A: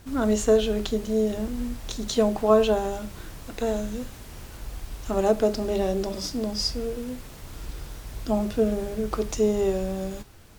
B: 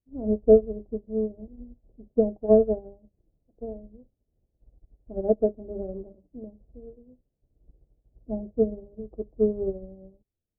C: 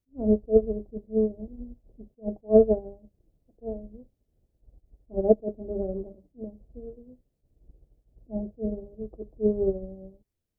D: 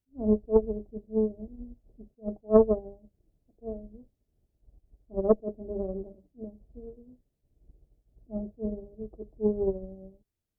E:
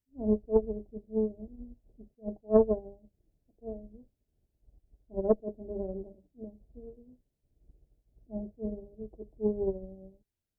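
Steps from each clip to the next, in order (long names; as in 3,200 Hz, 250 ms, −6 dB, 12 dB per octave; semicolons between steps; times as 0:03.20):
Butterworth low-pass 640 Hz 36 dB per octave; expander for the loud parts 2.5 to 1, over −44 dBFS; level +5 dB
level that may rise only so fast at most 340 dB per second; level +3.5 dB
harmonic generator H 2 −14 dB, 3 −34 dB, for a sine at −5.5 dBFS; notch filter 510 Hz, Q 12; level −2 dB
Butterworth band-reject 1,200 Hz, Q 4.9; level −3 dB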